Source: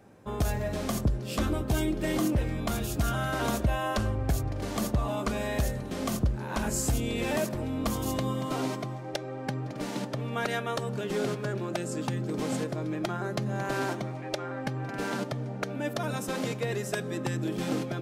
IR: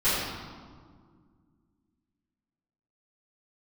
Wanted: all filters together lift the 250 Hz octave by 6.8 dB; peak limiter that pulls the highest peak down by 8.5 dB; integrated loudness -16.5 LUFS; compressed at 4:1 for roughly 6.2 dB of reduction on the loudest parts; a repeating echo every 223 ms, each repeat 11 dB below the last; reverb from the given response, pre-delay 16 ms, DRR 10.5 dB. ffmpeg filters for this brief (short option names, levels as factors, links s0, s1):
-filter_complex "[0:a]equalizer=f=250:t=o:g=8.5,acompressor=threshold=0.0501:ratio=4,alimiter=level_in=1.12:limit=0.0631:level=0:latency=1,volume=0.891,aecho=1:1:223|446|669:0.282|0.0789|0.0221,asplit=2[s0][s1];[1:a]atrim=start_sample=2205,adelay=16[s2];[s1][s2]afir=irnorm=-1:irlink=0,volume=0.0562[s3];[s0][s3]amix=inputs=2:normalize=0,volume=6.31"